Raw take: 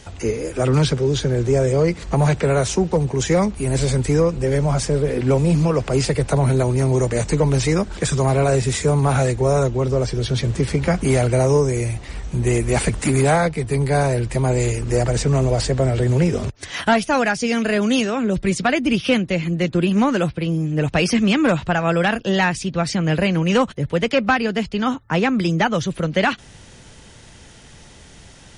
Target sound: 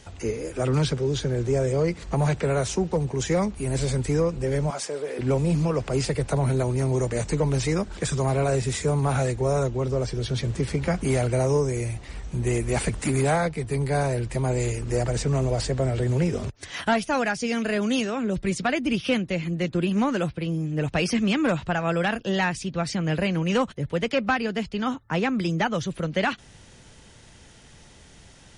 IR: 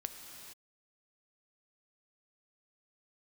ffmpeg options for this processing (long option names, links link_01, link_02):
-filter_complex "[0:a]asettb=1/sr,asplit=3[link_01][link_02][link_03];[link_01]atrim=end=4.704[link_04];[link_02]atrim=start=4.7:end=5.19,asetpts=PTS-STARTPTS,afade=type=in:duration=0.004:curve=qsin,afade=type=out:start_time=0.486:duration=0.004:curve=qsin,highpass=450[link_05];[link_03]atrim=start=5.186[link_06];[link_04][link_05]acrossfade=duration=0.004:curve1=hsin:curve2=qsin[link_07];[link_07][link_06]acrossfade=duration=0.004:curve1=qsin:curve2=hsin,volume=-6dB"